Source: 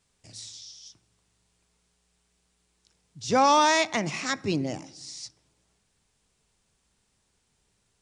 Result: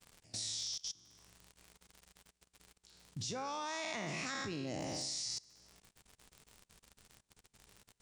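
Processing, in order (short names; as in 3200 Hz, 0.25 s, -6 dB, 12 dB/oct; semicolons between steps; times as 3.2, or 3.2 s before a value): spectral trails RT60 0.80 s; compressor, threshold -27 dBFS, peak gain reduction 11.5 dB; crackle 57/s -45 dBFS; level quantiser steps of 23 dB; gain +5.5 dB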